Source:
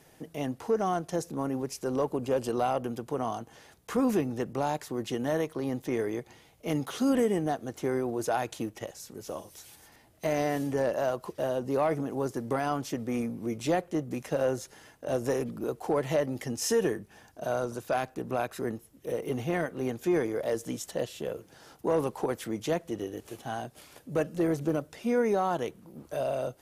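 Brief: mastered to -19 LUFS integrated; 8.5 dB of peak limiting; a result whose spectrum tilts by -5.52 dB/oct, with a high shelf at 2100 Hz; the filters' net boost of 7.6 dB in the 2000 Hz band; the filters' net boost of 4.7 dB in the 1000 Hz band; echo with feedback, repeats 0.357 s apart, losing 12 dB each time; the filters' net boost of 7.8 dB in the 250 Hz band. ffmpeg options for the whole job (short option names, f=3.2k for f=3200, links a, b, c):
-af "equalizer=f=250:t=o:g=9,equalizer=f=1k:t=o:g=4,equalizer=f=2k:t=o:g=6.5,highshelf=f=2.1k:g=3,alimiter=limit=-17.5dB:level=0:latency=1,aecho=1:1:357|714|1071:0.251|0.0628|0.0157,volume=9.5dB"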